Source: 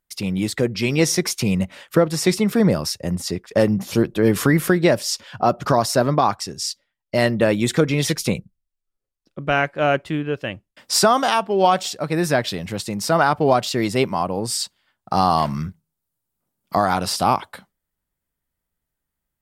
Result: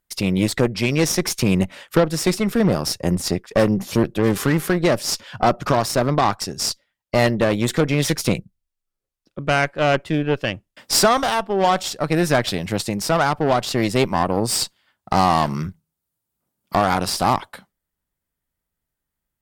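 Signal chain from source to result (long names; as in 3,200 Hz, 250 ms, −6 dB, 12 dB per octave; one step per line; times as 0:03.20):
0:04.22–0:04.65: hum with harmonics 400 Hz, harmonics 22, −41 dBFS −4 dB per octave
harmonic generator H 8 −21 dB, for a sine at −3 dBFS
speech leveller within 3 dB 0.5 s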